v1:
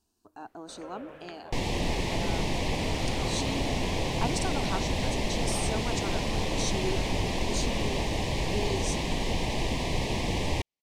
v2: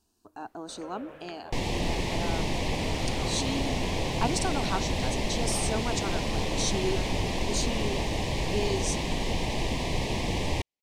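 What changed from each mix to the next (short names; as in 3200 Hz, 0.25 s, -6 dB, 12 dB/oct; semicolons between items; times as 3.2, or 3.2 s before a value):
speech +3.5 dB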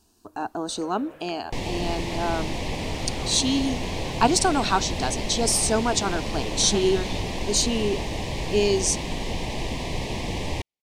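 speech +10.0 dB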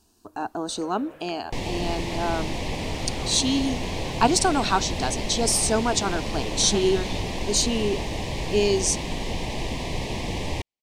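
none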